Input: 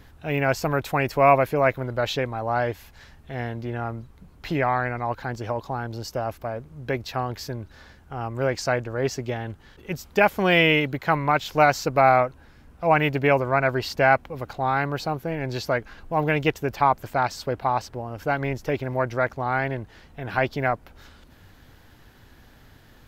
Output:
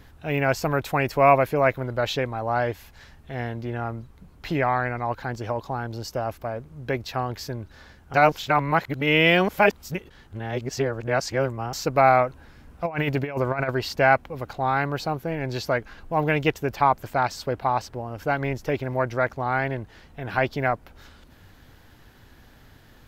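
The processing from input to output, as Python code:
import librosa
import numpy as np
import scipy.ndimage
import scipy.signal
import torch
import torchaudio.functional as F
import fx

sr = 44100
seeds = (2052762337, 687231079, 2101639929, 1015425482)

y = fx.over_compress(x, sr, threshold_db=-23.0, ratio=-0.5, at=(12.26, 13.7), fade=0.02)
y = fx.edit(y, sr, fx.reverse_span(start_s=8.14, length_s=3.59), tone=tone)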